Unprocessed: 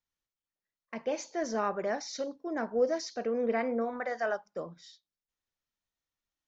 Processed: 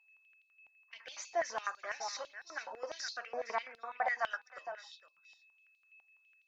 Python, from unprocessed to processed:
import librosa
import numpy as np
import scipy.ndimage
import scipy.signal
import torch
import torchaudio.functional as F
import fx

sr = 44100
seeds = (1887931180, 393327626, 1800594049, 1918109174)

y = fx.spec_quant(x, sr, step_db=15)
y = y + 10.0 ** (-65.0 / 20.0) * np.sin(2.0 * np.pi * 2600.0 * np.arange(len(y)) / sr)
y = y + 10.0 ** (-13.5 / 20.0) * np.pad(y, (int(461 * sr / 1000.0), 0))[:len(y)]
y = fx.filter_held_highpass(y, sr, hz=12.0, low_hz=800.0, high_hz=4000.0)
y = y * 10.0 ** (-2.5 / 20.0)